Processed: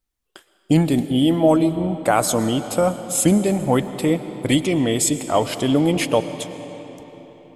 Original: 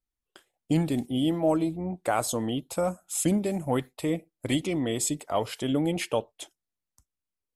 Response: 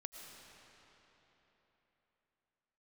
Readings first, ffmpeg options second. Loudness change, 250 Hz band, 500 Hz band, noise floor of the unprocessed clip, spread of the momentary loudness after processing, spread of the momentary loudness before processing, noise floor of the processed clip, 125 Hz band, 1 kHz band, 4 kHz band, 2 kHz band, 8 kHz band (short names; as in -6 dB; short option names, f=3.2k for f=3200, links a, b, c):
+9.0 dB, +9.0 dB, +9.0 dB, under -85 dBFS, 11 LU, 6 LU, -63 dBFS, +9.0 dB, +9.0 dB, +9.0 dB, +9.0 dB, +9.0 dB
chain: -filter_complex "[0:a]asplit=2[a][b];[1:a]atrim=start_sample=2205,asetrate=41013,aresample=44100[c];[b][c]afir=irnorm=-1:irlink=0,volume=-0.5dB[d];[a][d]amix=inputs=2:normalize=0,volume=5dB"